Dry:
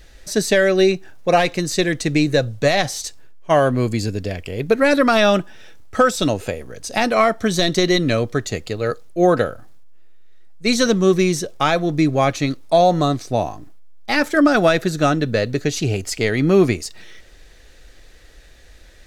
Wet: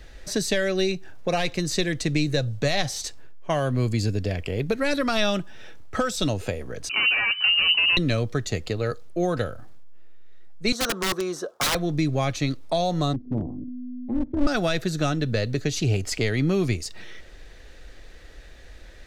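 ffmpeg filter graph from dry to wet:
-filter_complex "[0:a]asettb=1/sr,asplit=3[s0][s1][s2];[s0]atrim=end=6.894[s3];[s1]atrim=start=6.89:end=7.97,asetpts=PTS-STARTPTS,afade=t=in:d=0.004:c=qsin,afade=t=out:st=1.076:d=0.004:c=qsin,volume=9.44,asoftclip=hard,volume=0.106,lowshelf=f=310:g=10.5,lowpass=f=2600:t=q:w=0.5098,lowpass=f=2600:t=q:w=0.6013,lowpass=f=2600:t=q:w=0.9,lowpass=f=2600:t=q:w=2.563,afreqshift=-3000[s4];[s2]atrim=start=7.966[s5];[s3][s4]acrossfade=d=0.004:c1=hsin:c2=qsin[s6];[s6][s5]acrossfade=d=0.004:c1=qsin:c2=hsin,asettb=1/sr,asplit=3[s7][s8][s9];[s7]atrim=end=10.724[s10];[s8]atrim=start=10.72:end=11.75,asetpts=PTS-STARTPTS,afade=t=in:d=0.004:c=qsin,afade=t=out:st=1.026:d=0.004:c=qsin,highpass=460,highshelf=f=1700:t=q:w=3:g=-7.5,aeval=exprs='(mod(5.01*val(0)+1,2)-1)/5.01':c=same[s11];[s9]atrim=start=11.746[s12];[s10][s11]acrossfade=d=0.004:c1=hsin:c2=qsin[s13];[s13][s12]acrossfade=d=0.004:c1=qsin:c2=hsin,asettb=1/sr,asplit=3[s14][s15][s16];[s14]atrim=end=13.134[s17];[s15]atrim=start=13.13:end=14.47,asetpts=PTS-STARTPTS,afade=t=in:d=0.004:c=qsin,afade=t=out:st=1.336:d=0.004:c=qsin,tremolo=f=250:d=0.857,lowpass=f=260:t=q:w=3.2,aeval=exprs='clip(val(0),-1,0.1)':c=same[s18];[s16]atrim=start=14.466[s19];[s17][s18]acrossfade=d=0.004:c1=hsin:c2=qsin[s20];[s20][s19]acrossfade=d=0.004:c1=qsin:c2=hsin,highshelf=f=5100:g=-9,acrossover=split=130|3000[s21][s22][s23];[s22]acompressor=threshold=0.0398:ratio=3[s24];[s21][s24][s23]amix=inputs=3:normalize=0,volume=1.19"

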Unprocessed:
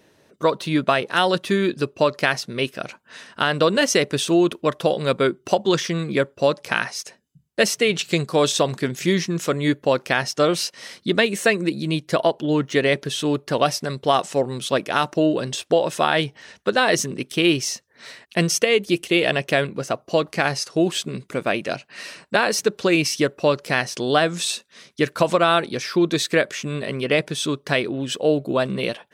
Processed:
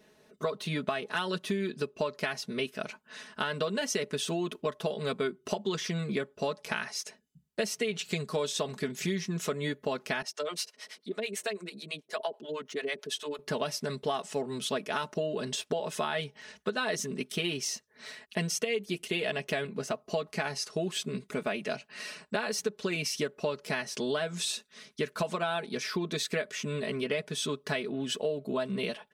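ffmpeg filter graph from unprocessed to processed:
-filter_complex "[0:a]asettb=1/sr,asplit=3[s0][s1][s2];[s0]atrim=end=10.224[s3];[s1]atrim=start=10.22:end=13.39,asetpts=PTS-STARTPTS,afade=t=in:d=0.004:c=qsin,afade=t=out:st=3.166:d=0.004:c=qsin,acompressor=threshold=0.0794:ratio=1.5:attack=3.2:release=140:knee=1:detection=peak,highpass=360,acrossover=split=520[s4][s5];[s4]aeval=exprs='val(0)*(1-1/2+1/2*cos(2*PI*9.1*n/s))':c=same[s6];[s5]aeval=exprs='val(0)*(1-1/2-1/2*cos(2*PI*9.1*n/s))':c=same[s7];[s6][s7]amix=inputs=2:normalize=0[s8];[s2]atrim=start=13.386[s9];[s3][s8]acrossfade=d=0.004:c1=hsin:c2=qsin[s10];[s10][s9]acrossfade=d=0.004:c1=qsin:c2=hsin,aecho=1:1:4.7:0.81,acompressor=threshold=0.0794:ratio=4,volume=0.447"

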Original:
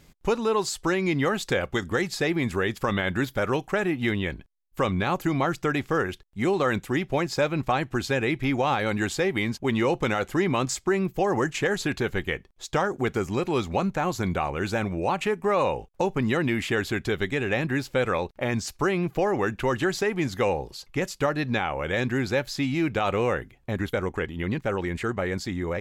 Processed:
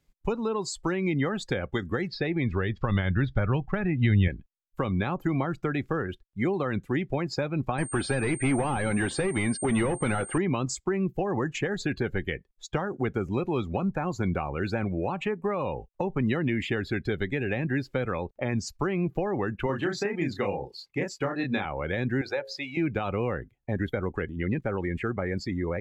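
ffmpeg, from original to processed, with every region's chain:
-filter_complex "[0:a]asettb=1/sr,asplit=3[s0][s1][s2];[s0]atrim=end=2.084[s3];[s1]atrim=start=2.08:end=4.28,asetpts=PTS-STARTPTS,afade=t=in:d=0.004:c=qsin,afade=t=out:st=2.196:d=0.004:c=qsin,asubboost=boost=9.5:cutoff=140,lowpass=f=5300:w=0.5412,lowpass=f=5300:w=1.3066[s4];[s2]atrim=start=4.276[s5];[s3][s4]acrossfade=d=0.004:c1=hsin:c2=qsin[s6];[s6][s5]acrossfade=d=0.004:c1=qsin:c2=hsin,asettb=1/sr,asplit=3[s7][s8][s9];[s7]atrim=end=7.784[s10];[s8]atrim=start=7.78:end=10.38,asetpts=PTS-STARTPTS,afade=t=in:d=0.004:c=qsin,afade=t=out:st=2.596:d=0.004:c=qsin,asplit=2[s11][s12];[s12]highpass=f=720:p=1,volume=14.1,asoftclip=type=tanh:threshold=0.224[s13];[s11][s13]amix=inputs=2:normalize=0,lowpass=f=1800:p=1,volume=0.501,aeval=exprs='sgn(val(0))*max(abs(val(0))-0.00562,0)':c=same,aeval=exprs='val(0)+0.02*sin(2*PI*8700*n/s)':c=same[s14];[s9]atrim=start=10.376[s15];[s10][s14]acrossfade=d=0.004:c1=hsin:c2=qsin[s16];[s16][s15]acrossfade=d=0.004:c1=qsin:c2=hsin,asettb=1/sr,asplit=3[s17][s18][s19];[s17]atrim=end=19.664[s20];[s18]atrim=start=19.66:end=21.65,asetpts=PTS-STARTPTS,afade=t=in:d=0.004:c=qsin,afade=t=out:st=1.986:d=0.004:c=qsin,highpass=f=190:p=1,asplit=2[s21][s22];[s22]adelay=30,volume=0.708[s23];[s21][s23]amix=inputs=2:normalize=0,atrim=end_sample=87759[s24];[s19]atrim=start=21.646[s25];[s20][s24]acrossfade=d=0.004:c1=hsin:c2=qsin[s26];[s26][s25]acrossfade=d=0.004:c1=qsin:c2=hsin,asettb=1/sr,asplit=3[s27][s28][s29];[s27]atrim=end=22.214[s30];[s28]atrim=start=22.21:end=22.77,asetpts=PTS-STARTPTS,afade=t=in:d=0.004:c=qsin,afade=t=out:st=0.556:d=0.004:c=qsin,lowshelf=f=350:t=q:w=1.5:g=-13.5,bandreject=f=60:t=h:w=6,bandreject=f=120:t=h:w=6,bandreject=f=180:t=h:w=6,bandreject=f=240:t=h:w=6,bandreject=f=300:t=h:w=6,bandreject=f=360:t=h:w=6,bandreject=f=420:t=h:w=6,bandreject=f=480:t=h:w=6,bandreject=f=540:t=h:w=6[s31];[s29]atrim=start=22.766[s32];[s30][s31]acrossfade=d=0.004:c1=hsin:c2=qsin[s33];[s33][s32]acrossfade=d=0.004:c1=qsin:c2=hsin,afftdn=nr=19:nf=-35,acrossover=split=280[s34][s35];[s35]acompressor=threshold=0.0398:ratio=6[s36];[s34][s36]amix=inputs=2:normalize=0"

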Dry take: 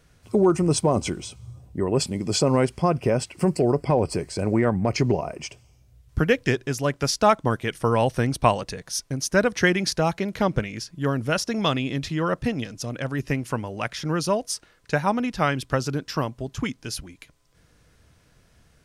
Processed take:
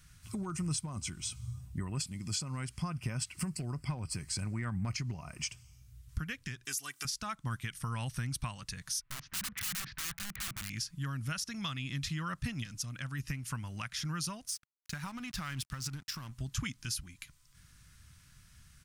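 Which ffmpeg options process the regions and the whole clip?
-filter_complex "[0:a]asettb=1/sr,asplit=3[s0][s1][s2];[s0]atrim=end=6.654[s3];[s1]atrim=start=6.65:end=7.05,asetpts=PTS-STARTPTS,afade=t=in:d=0.004:c=qsin,afade=t=out:st=0.396:d=0.004:c=qsin,highpass=300,aemphasis=mode=production:type=75kf,aecho=1:1:2.6:0.65,atrim=end_sample=17640[s4];[s2]atrim=start=7.046[s5];[s3][s4]acrossfade=d=0.004:c1=hsin:c2=qsin[s6];[s6][s5]acrossfade=d=0.004:c1=qsin:c2=hsin,asettb=1/sr,asplit=3[s7][s8][s9];[s7]atrim=end=9.014[s10];[s8]atrim=start=9.01:end=10.7,asetpts=PTS-STARTPTS,afade=t=in:d=0.004:c=qsin,afade=t=out:st=1.686:d=0.004:c=qsin,lowpass=f=2500:w=0.5412,lowpass=f=2500:w=1.3066,acompressor=threshold=0.0158:ratio=1.5:attack=3.2:release=140:knee=1:detection=peak,aeval=exprs='(mod(31.6*val(0)+1,2)-1)/31.6':c=same[s11];[s9]atrim=start=10.696[s12];[s10][s11]acrossfade=d=0.004:c1=hsin:c2=qsin[s13];[s13][s12]acrossfade=d=0.004:c1=qsin:c2=hsin,asettb=1/sr,asplit=3[s14][s15][s16];[s14]atrim=end=14.484[s17];[s15]atrim=start=14.48:end=16.33,asetpts=PTS-STARTPTS,afade=t=in:d=0.004:c=qsin,afade=t=out:st=1.846:d=0.004:c=qsin,acompressor=threshold=0.0398:ratio=6:attack=3.2:release=140:knee=1:detection=peak,aeval=exprs='sgn(val(0))*max(abs(val(0))-0.00501,0)':c=same[s18];[s16]atrim=start=16.326[s19];[s17][s18]acrossfade=d=0.004:c1=hsin:c2=qsin[s20];[s20][s19]acrossfade=d=0.004:c1=qsin:c2=hsin,acompressor=threshold=0.0316:ratio=2.5,firequalizer=gain_entry='entry(130,0);entry(440,-23);entry(1200,-2);entry(8500,5)':delay=0.05:min_phase=1,alimiter=level_in=1.06:limit=0.0631:level=0:latency=1:release=412,volume=0.944"

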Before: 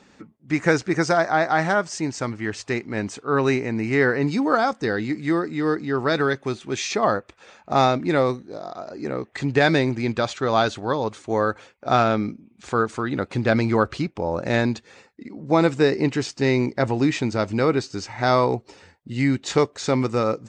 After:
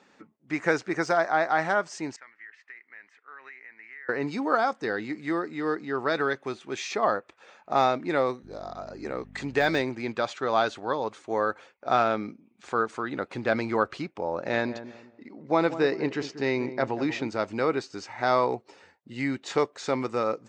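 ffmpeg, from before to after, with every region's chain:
-filter_complex "[0:a]asettb=1/sr,asplit=3[s0][s1][s2];[s0]atrim=end=2.164[s3];[s1]atrim=start=2.16:end=4.09,asetpts=PTS-STARTPTS,afade=t=in:d=0.004:c=qsin,afade=t=out:st=1.926:d=0.004:c=qsin,bandpass=f=1900:t=q:w=5.9,acompressor=threshold=0.0141:ratio=6:attack=3.2:release=140:knee=1:detection=peak[s4];[s2]atrim=start=4.086[s5];[s3][s4]acrossfade=d=0.004:c1=hsin:c2=qsin[s6];[s6][s5]acrossfade=d=0.004:c1=qsin:c2=hsin,asettb=1/sr,asplit=3[s7][s8][s9];[s7]atrim=end=8.434[s10];[s8]atrim=start=8.43:end=9.82,asetpts=PTS-STARTPTS,afade=t=in:d=0.004:c=qsin,afade=t=out:st=1.386:d=0.004:c=qsin,highshelf=f=4400:g=7,aeval=exprs='val(0)+0.0282*(sin(2*PI*50*n/s)+sin(2*PI*2*50*n/s)/2+sin(2*PI*3*50*n/s)/3+sin(2*PI*4*50*n/s)/4+sin(2*PI*5*50*n/s)/5)':c=same[s11];[s9]atrim=start=9.816[s12];[s10][s11]acrossfade=d=0.004:c1=hsin:c2=qsin[s13];[s13][s12]acrossfade=d=0.004:c1=qsin:c2=hsin,asettb=1/sr,asplit=3[s14][s15][s16];[s14]atrim=end=14.274[s17];[s15]atrim=start=14.27:end=17.28,asetpts=PTS-STARTPTS,afade=t=in:d=0.004:c=qsin,afade=t=out:st=3.006:d=0.004:c=qsin,lowpass=f=6500:w=0.5412,lowpass=f=6500:w=1.3066,asplit=2[s18][s19];[s19]adelay=189,lowpass=f=850:p=1,volume=0.282,asplit=2[s20][s21];[s21]adelay=189,lowpass=f=850:p=1,volume=0.33,asplit=2[s22][s23];[s23]adelay=189,lowpass=f=850:p=1,volume=0.33,asplit=2[s24][s25];[s25]adelay=189,lowpass=f=850:p=1,volume=0.33[s26];[s18][s20][s22][s24][s26]amix=inputs=5:normalize=0,atrim=end_sample=132741[s27];[s16]atrim=start=17.276[s28];[s17][s27]acrossfade=d=0.004:c1=hsin:c2=qsin[s29];[s29][s28]acrossfade=d=0.004:c1=qsin:c2=hsin,highpass=f=520:p=1,deesser=0.55,highshelf=f=3200:g=-8.5,volume=0.841"

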